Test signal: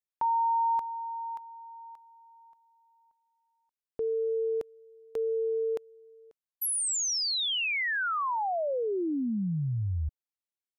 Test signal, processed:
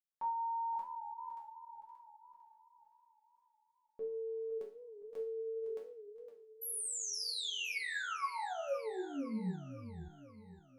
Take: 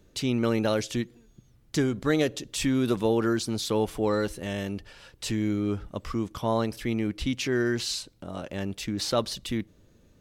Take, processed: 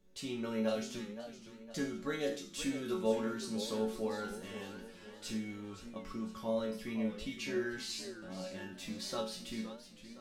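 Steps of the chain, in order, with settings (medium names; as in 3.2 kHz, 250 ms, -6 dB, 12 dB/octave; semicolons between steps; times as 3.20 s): chord resonator F#3 minor, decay 0.44 s; modulated delay 515 ms, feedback 48%, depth 154 cents, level -12 dB; trim +8 dB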